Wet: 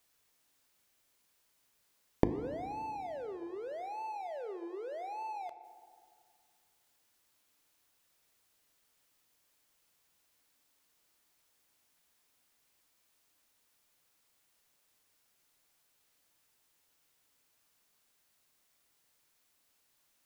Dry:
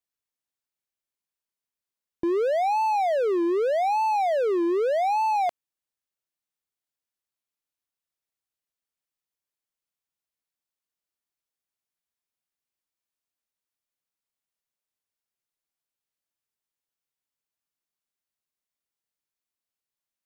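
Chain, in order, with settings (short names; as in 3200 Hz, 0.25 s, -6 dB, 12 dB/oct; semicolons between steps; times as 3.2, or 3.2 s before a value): flipped gate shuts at -25 dBFS, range -35 dB; notches 50/100/150/200/250/300/350 Hz; FDN reverb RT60 2.1 s, low-frequency decay 1.3×, high-frequency decay 0.45×, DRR 10 dB; gain +16.5 dB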